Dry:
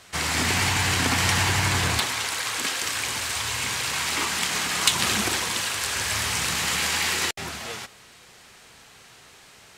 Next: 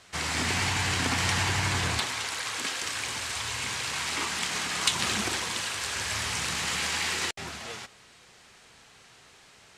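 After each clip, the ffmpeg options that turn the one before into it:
-af "lowpass=9.6k,volume=-4.5dB"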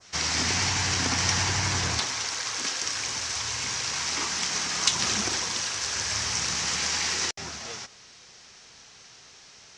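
-af "adynamicequalizer=threshold=0.00631:dfrequency=3500:dqfactor=0.84:tfrequency=3500:tqfactor=0.84:attack=5:release=100:ratio=0.375:range=2:mode=cutabove:tftype=bell,lowpass=f=5.8k:t=q:w=4"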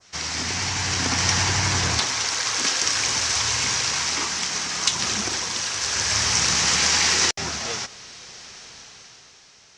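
-af "dynaudnorm=f=110:g=17:m=11dB,volume=-1.5dB"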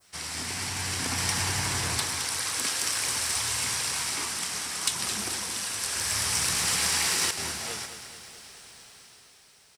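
-af "aexciter=amount=15.5:drive=8.3:freq=9.5k,aecho=1:1:215|430|645|860|1075|1290:0.316|0.177|0.0992|0.0555|0.0311|0.0174,volume=-7.5dB"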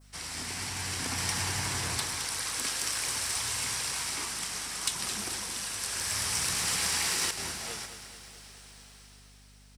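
-af "aeval=exprs='val(0)+0.00251*(sin(2*PI*50*n/s)+sin(2*PI*2*50*n/s)/2+sin(2*PI*3*50*n/s)/3+sin(2*PI*4*50*n/s)/4+sin(2*PI*5*50*n/s)/5)':c=same,volume=-3.5dB"

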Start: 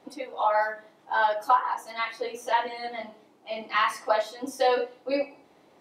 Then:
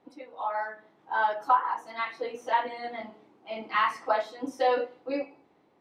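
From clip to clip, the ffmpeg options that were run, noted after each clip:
-af "lowpass=f=1.9k:p=1,equalizer=f=600:w=3.1:g=-4.5,dynaudnorm=f=270:g=7:m=7dB,volume=-6dB"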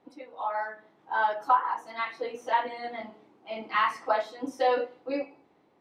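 -af anull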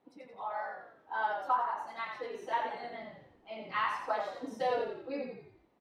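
-filter_complex "[0:a]asplit=6[a][b][c][d][e][f];[b]adelay=87,afreqshift=-46,volume=-5.5dB[g];[c]adelay=174,afreqshift=-92,volume=-12.4dB[h];[d]adelay=261,afreqshift=-138,volume=-19.4dB[i];[e]adelay=348,afreqshift=-184,volume=-26.3dB[j];[f]adelay=435,afreqshift=-230,volume=-33.2dB[k];[a][g][h][i][j][k]amix=inputs=6:normalize=0,volume=-7.5dB"

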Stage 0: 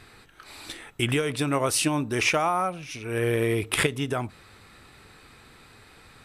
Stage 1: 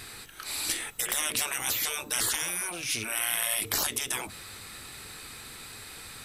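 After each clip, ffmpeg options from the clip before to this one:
-af "crystalizer=i=4:c=0,afftfilt=real='re*lt(hypot(re,im),0.0891)':imag='im*lt(hypot(re,im),0.0891)':win_size=1024:overlap=0.75,volume=2dB"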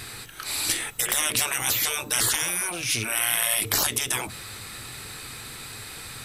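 -af "equalizer=f=120:w=3.8:g=7.5,volume=5dB"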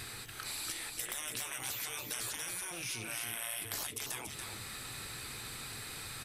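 -af "acompressor=threshold=-35dB:ratio=3,aecho=1:1:284:0.531,volume=-5.5dB"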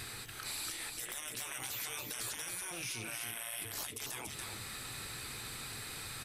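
-af "alimiter=level_in=5dB:limit=-24dB:level=0:latency=1:release=46,volume=-5dB"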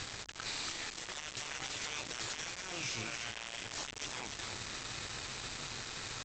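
-af "aresample=16000,acrusher=bits=6:mix=0:aa=0.000001,aresample=44100,aeval=exprs='val(0)+0.000501*(sin(2*PI*50*n/s)+sin(2*PI*2*50*n/s)/2+sin(2*PI*3*50*n/s)/3+sin(2*PI*4*50*n/s)/4+sin(2*PI*5*50*n/s)/5)':c=same,volume=2dB"

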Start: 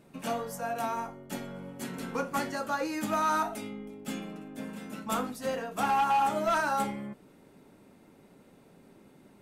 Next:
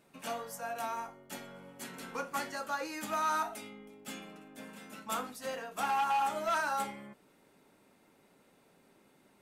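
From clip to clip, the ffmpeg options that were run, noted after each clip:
-af "lowshelf=f=470:g=-11,volume=-2dB"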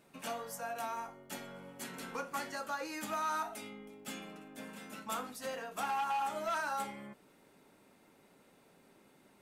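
-af "acompressor=threshold=-42dB:ratio=1.5,volume=1dB"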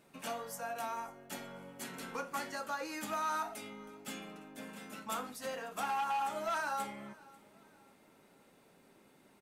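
-af "aecho=1:1:543|1086|1629:0.0708|0.0269|0.0102"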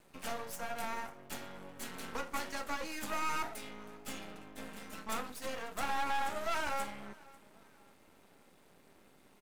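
-af "aeval=exprs='max(val(0),0)':c=same,volume=4.5dB"

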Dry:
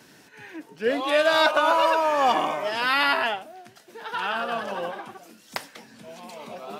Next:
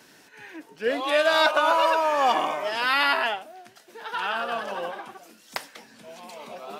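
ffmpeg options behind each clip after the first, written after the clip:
-af "equalizer=f=110:t=o:w=2.6:g=-7"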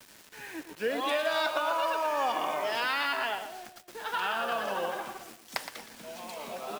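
-af "acompressor=threshold=-27dB:ratio=5,acrusher=bits=7:mix=0:aa=0.000001,aecho=1:1:117|234|351:0.316|0.098|0.0304"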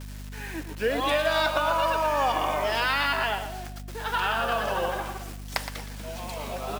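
-af "aeval=exprs='val(0)+0.00794*(sin(2*PI*50*n/s)+sin(2*PI*2*50*n/s)/2+sin(2*PI*3*50*n/s)/3+sin(2*PI*4*50*n/s)/4+sin(2*PI*5*50*n/s)/5)':c=same,volume=4.5dB"

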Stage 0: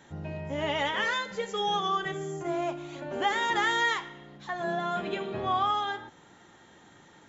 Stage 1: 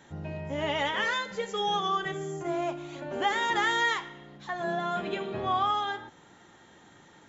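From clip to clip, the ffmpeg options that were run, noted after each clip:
-af anull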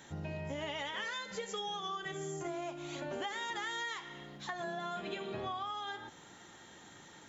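-af "highshelf=f=3.1k:g=8.5,acompressor=threshold=-35dB:ratio=10,volume=-1.5dB"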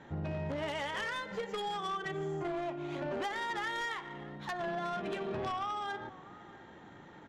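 -filter_complex "[0:a]adynamicsmooth=sensitivity=6:basefreq=1.7k,asplit=2[a][b];[b]adelay=641.4,volume=-19dB,highshelf=f=4k:g=-14.4[c];[a][c]amix=inputs=2:normalize=0,aeval=exprs='0.0376*(cos(1*acos(clip(val(0)/0.0376,-1,1)))-cos(1*PI/2))+0.00376*(cos(4*acos(clip(val(0)/0.0376,-1,1)))-cos(4*PI/2))+0.0133*(cos(5*acos(clip(val(0)/0.0376,-1,1)))-cos(5*PI/2))+0.00188*(cos(6*acos(clip(val(0)/0.0376,-1,1)))-cos(6*PI/2))+0.00531*(cos(7*acos(clip(val(0)/0.0376,-1,1)))-cos(7*PI/2))':c=same"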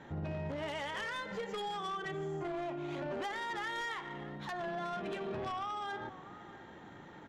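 -af "alimiter=level_in=10dB:limit=-24dB:level=0:latency=1:release=22,volume=-10dB,volume=1dB"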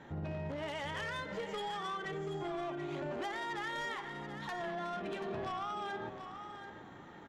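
-af "aecho=1:1:733:0.335,volume=-1dB"

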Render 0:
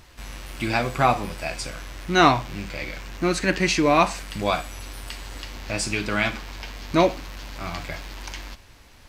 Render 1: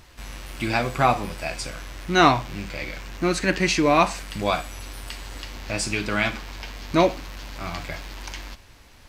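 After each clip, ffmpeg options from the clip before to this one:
-af anull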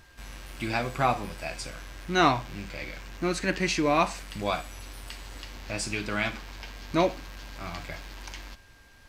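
-af "aeval=exprs='val(0)+0.00224*sin(2*PI*1600*n/s)':c=same,volume=-5.5dB"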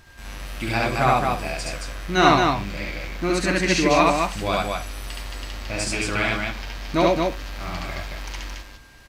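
-af "aecho=1:1:69.97|221.6:1|0.708,volume=3dB"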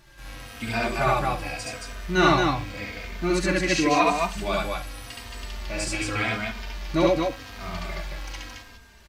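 -filter_complex "[0:a]asplit=2[a][b];[b]adelay=3,afreqshift=-0.87[c];[a][c]amix=inputs=2:normalize=1"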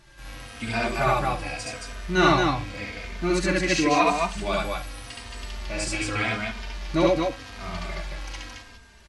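-ar 44100 -c:a mp2 -b:a 96k

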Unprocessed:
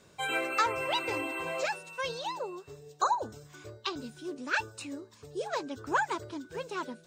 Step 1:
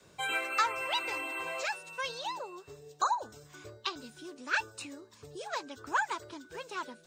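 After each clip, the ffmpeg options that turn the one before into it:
-filter_complex "[0:a]adynamicequalizer=threshold=0.00141:dfrequency=130:dqfactor=1.1:tfrequency=130:tqfactor=1.1:attack=5:release=100:ratio=0.375:range=3:mode=cutabove:tftype=bell,acrossover=split=750[a][b];[a]acompressor=threshold=-45dB:ratio=6[c];[c][b]amix=inputs=2:normalize=0"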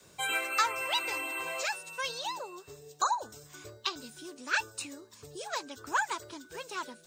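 -af "highshelf=f=5.9k:g=10.5"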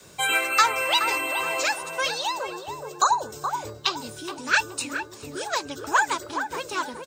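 -filter_complex "[0:a]asplit=2[a][b];[b]adelay=422,lowpass=f=1.1k:p=1,volume=-5dB,asplit=2[c][d];[d]adelay=422,lowpass=f=1.1k:p=1,volume=0.49,asplit=2[e][f];[f]adelay=422,lowpass=f=1.1k:p=1,volume=0.49,asplit=2[g][h];[h]adelay=422,lowpass=f=1.1k:p=1,volume=0.49,asplit=2[i][j];[j]adelay=422,lowpass=f=1.1k:p=1,volume=0.49,asplit=2[k][l];[l]adelay=422,lowpass=f=1.1k:p=1,volume=0.49[m];[a][c][e][g][i][k][m]amix=inputs=7:normalize=0,volume=8.5dB"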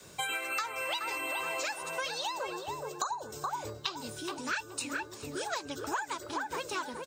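-af "acompressor=threshold=-28dB:ratio=10,volume=-3dB"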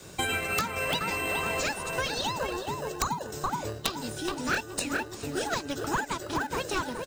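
-filter_complex "[0:a]asplit=2[a][b];[b]acrusher=samples=39:mix=1:aa=0.000001,volume=-6dB[c];[a][c]amix=inputs=2:normalize=0,aeval=exprs='(mod(9.44*val(0)+1,2)-1)/9.44':c=same,volume=4dB"

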